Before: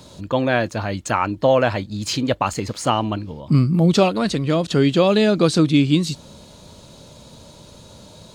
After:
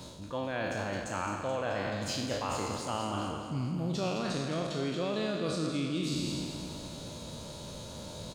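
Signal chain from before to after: spectral trails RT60 1.08 s; reverse; compressor 5:1, threshold -30 dBFS, peak gain reduction 19 dB; reverse; feedback echo 0.215 s, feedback 56%, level -8 dB; gain -3 dB

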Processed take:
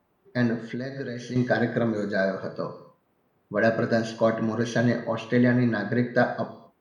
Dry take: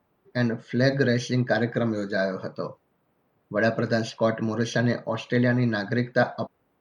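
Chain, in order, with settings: 5.73–6.14 high shelf 5700 Hz -12 dB; non-linear reverb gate 0.28 s falling, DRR 7 dB; 0.65–1.36 compressor 10:1, threshold -29 dBFS, peak gain reduction 14 dB; dynamic EQ 4400 Hz, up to -4 dB, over -44 dBFS, Q 0.72

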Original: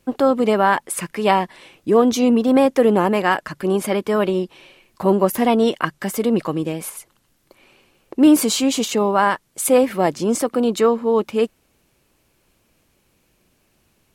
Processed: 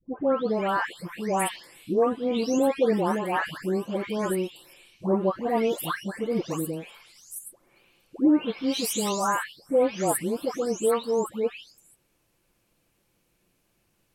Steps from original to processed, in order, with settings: spectral delay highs late, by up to 0.494 s; gain -6.5 dB

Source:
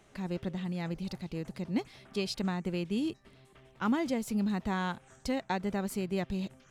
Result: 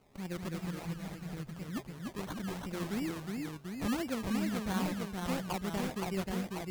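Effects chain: 0.65–2.73 dynamic EQ 430 Hz, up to -7 dB, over -46 dBFS, Q 0.81; decimation with a swept rate 24×, swing 60% 2.9 Hz; echoes that change speed 0.192 s, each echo -1 st, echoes 2; gain -4.5 dB

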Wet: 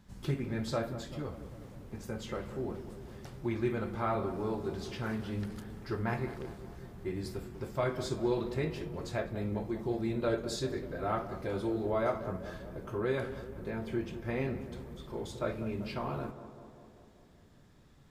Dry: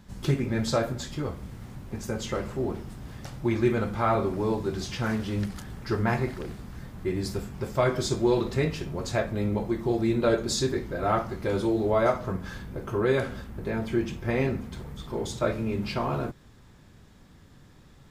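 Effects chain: dynamic EQ 6400 Hz, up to -5 dB, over -54 dBFS, Q 1.6; on a send: tape echo 0.196 s, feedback 75%, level -10.5 dB, low-pass 1300 Hz; on the sum: gain -8 dB

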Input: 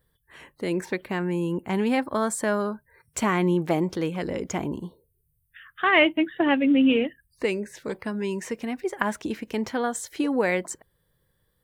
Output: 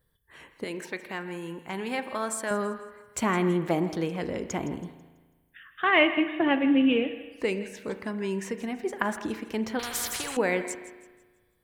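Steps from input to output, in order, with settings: 0.64–2.51 low shelf 470 Hz -11.5 dB; thinning echo 0.164 s, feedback 37%, level -15 dB; spring tank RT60 1.4 s, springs 36 ms, chirp 55 ms, DRR 10.5 dB; 9.79–10.37 spectral compressor 4:1; gain -2.5 dB

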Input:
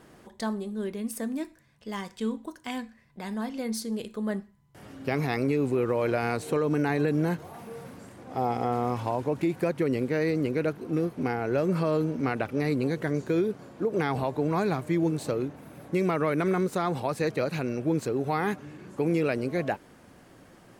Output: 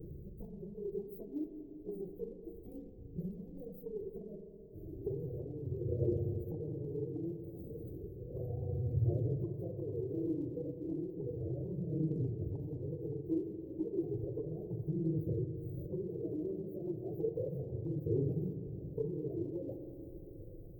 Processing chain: phase scrambler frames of 50 ms; inverse Chebyshev band-stop 880–9500 Hz, stop band 50 dB; bell 5100 Hz -14 dB 2.9 oct; compressor 6:1, threshold -41 dBFS, peak gain reduction 17.5 dB; phaser 0.33 Hz, delay 3.8 ms, feedback 62%; fixed phaser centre 580 Hz, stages 4; spring tank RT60 3.9 s, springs 39/43 ms, chirp 70 ms, DRR 5.5 dB; gain +9 dB

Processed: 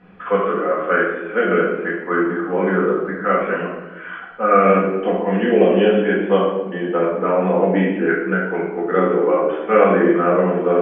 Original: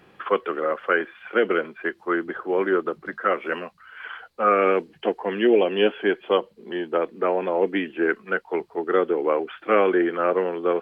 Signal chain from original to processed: LPF 2200 Hz 12 dB/oct; bell 190 Hz +10 dB 0.21 oct; reverb RT60 1.0 s, pre-delay 4 ms, DRR -6 dB; gain -1.5 dB

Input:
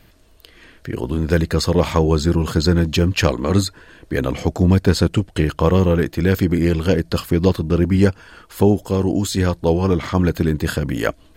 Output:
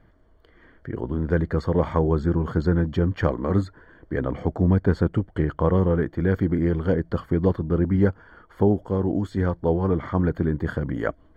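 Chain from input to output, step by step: polynomial smoothing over 41 samples; gain -5 dB

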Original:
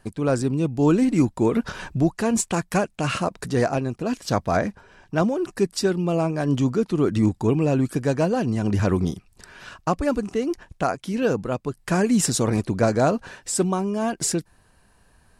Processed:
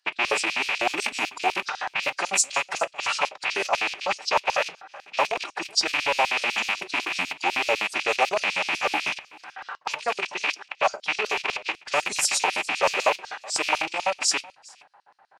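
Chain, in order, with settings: rattling part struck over -33 dBFS, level -12 dBFS; notches 60/120 Hz; low-pass opened by the level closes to 1800 Hz, open at -15 dBFS; in parallel at +1 dB: compressor 12:1, threshold -28 dBFS, peak gain reduction 15.5 dB; on the sum: limiter -11 dBFS, peak gain reduction 6 dB; formant-preserving pitch shift -3.5 st; echo 0.416 s -22.5 dB; on a send at -10 dB: reverb, pre-delay 5 ms; on the sum: LFO high-pass square 8 Hz 800–4900 Hz

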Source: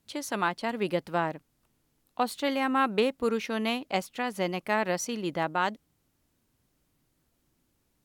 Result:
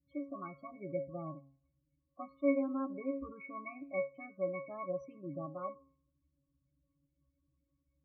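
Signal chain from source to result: octave resonator C#, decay 0.23 s; loudest bins only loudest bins 16; de-hum 136.2 Hz, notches 36; gain +5 dB

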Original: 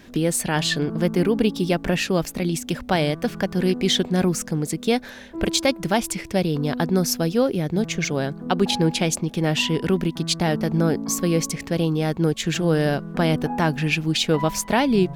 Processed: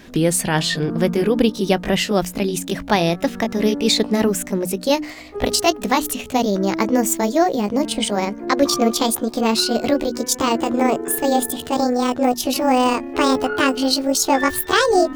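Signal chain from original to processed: gliding pitch shift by +10.5 st starting unshifted; notches 60/120/180/240/300 Hz; gain +4.5 dB

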